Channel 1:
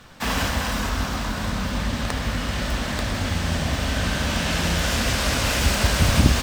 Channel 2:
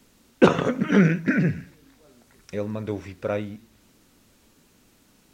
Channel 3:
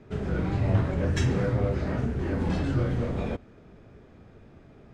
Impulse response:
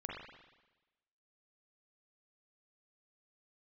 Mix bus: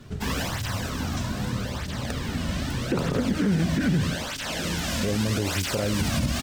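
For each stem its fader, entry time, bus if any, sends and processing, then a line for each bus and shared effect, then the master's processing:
−0.5 dB, 0.00 s, no send, parametric band 1,300 Hz −3.5 dB 2.7 octaves; through-zero flanger with one copy inverted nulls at 0.8 Hz, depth 2.6 ms
+1.5 dB, 2.50 s, no send, low-shelf EQ 330 Hz +11.5 dB; downward compressor 4 to 1, threshold −18 dBFS, peak gain reduction 12.5 dB
−3.5 dB, 0.00 s, no send, bass and treble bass +10 dB, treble +13 dB; downward compressor, threshold −26 dBFS, peak gain reduction 16.5 dB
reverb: not used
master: brickwall limiter −15.5 dBFS, peak gain reduction 10 dB

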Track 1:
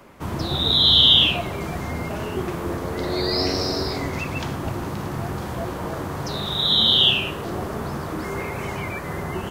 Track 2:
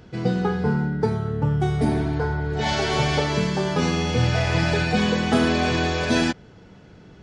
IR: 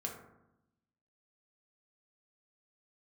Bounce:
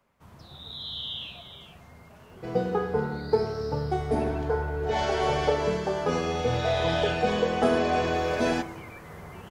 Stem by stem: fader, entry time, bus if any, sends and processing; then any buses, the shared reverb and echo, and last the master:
0:07.96 −21.5 dB → 0:08.18 −14 dB, 0.00 s, no send, echo send −12.5 dB, parametric band 330 Hz −8.5 dB 0.63 octaves
−4.5 dB, 2.30 s, send −5 dB, no echo send, graphic EQ with 10 bands 125 Hz −10 dB, 250 Hz −6 dB, 500 Hz +4 dB, 2,000 Hz −4 dB, 4,000 Hz −7 dB, 8,000 Hz −6 dB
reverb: on, RT60 0.85 s, pre-delay 3 ms
echo: single-tap delay 417 ms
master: no processing

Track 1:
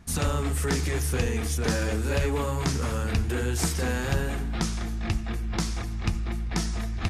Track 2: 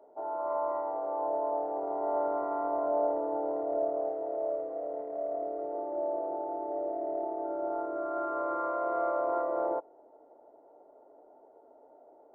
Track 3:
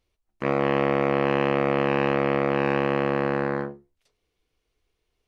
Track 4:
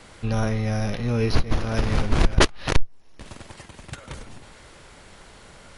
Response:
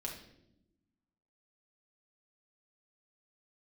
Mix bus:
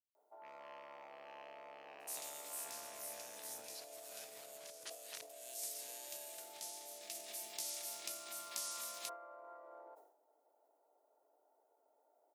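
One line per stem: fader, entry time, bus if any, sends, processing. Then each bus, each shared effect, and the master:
0:06.88 −16 dB → 0:07.49 −3.5 dB, 2.00 s, bus A, no send, spectral envelope flattened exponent 0.6; parametric band 1,400 Hz −10 dB 0.73 octaves
+2.5 dB, 0.15 s, no bus, no send, downward compressor 2.5 to 1, threshold −38 dBFS, peak gain reduction 9.5 dB
−18.5 dB, 0.00 s, no bus, no send, low-pass that shuts in the quiet parts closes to 1,300 Hz, open at −20.5 dBFS
−12.0 dB, 2.45 s, bus A, no send, no processing
bus A: 0.0 dB, downward compressor 6 to 1, threshold −35 dBFS, peak gain reduction 12.5 dB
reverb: not used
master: high-pass filter 120 Hz 24 dB per octave; first difference; level that may fall only so fast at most 87 dB per second

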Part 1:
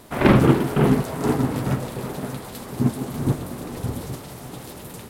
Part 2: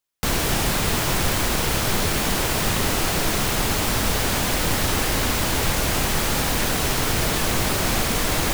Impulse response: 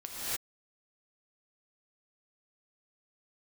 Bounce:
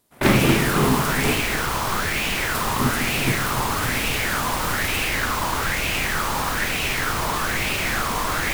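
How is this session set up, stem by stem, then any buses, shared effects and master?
−4.5 dB, 0.00 s, muted 0:01.40–0:02.54, send −11 dB, high-shelf EQ 3,600 Hz +11.5 dB
−5.0 dB, 0.00 s, no send, auto-filter bell 1.1 Hz 990–2,600 Hz +14 dB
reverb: on, pre-delay 3 ms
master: noise gate with hold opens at −17 dBFS

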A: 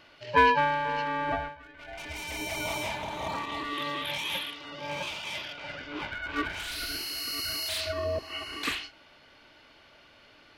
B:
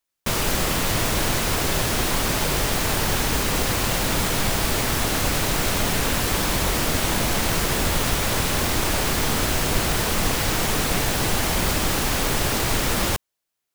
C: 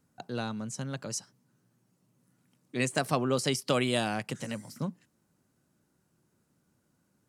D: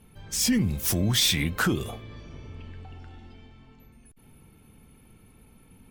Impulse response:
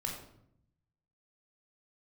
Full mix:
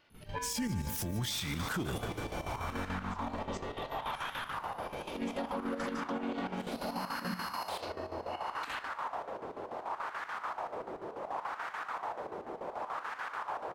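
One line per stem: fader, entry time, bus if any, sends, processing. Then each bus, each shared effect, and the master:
−14.0 dB, 0.00 s, send −7.5 dB, no echo send, no processing
−13.5 dB, 1.05 s, no send, echo send −10.5 dB, parametric band 940 Hz +12 dB 1.5 octaves; auto-filter band-pass sine 0.68 Hz 390–1,600 Hz
−5.0 dB, 2.40 s, send −3.5 dB, no echo send, channel vocoder with a chord as carrier major triad, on F#3
+2.0 dB, 0.10 s, no send, echo send −16.5 dB, no processing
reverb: on, RT60 0.70 s, pre-delay 17 ms
echo: repeating echo 160 ms, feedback 55%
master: square-wave tremolo 6.9 Hz, depth 65%, duty 65%; brickwall limiter −27 dBFS, peak gain reduction 17.5 dB

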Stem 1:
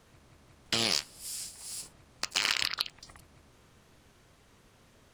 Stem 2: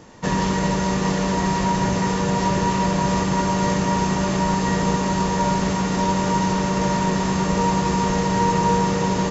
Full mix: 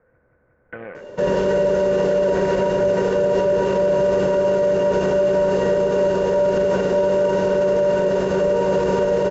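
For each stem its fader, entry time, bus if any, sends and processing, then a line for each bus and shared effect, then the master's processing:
−5.0 dB, 0.00 s, no send, Butterworth low-pass 2,100 Hz 48 dB per octave
−2.5 dB, 0.95 s, no send, high-shelf EQ 5,600 Hz −8 dB; hollow resonant body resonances 400/580/2,800 Hz, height 17 dB, ringing for 85 ms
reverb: not used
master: hollow resonant body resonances 510/1,500 Hz, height 16 dB, ringing for 45 ms; brickwall limiter −11 dBFS, peak gain reduction 10.5 dB

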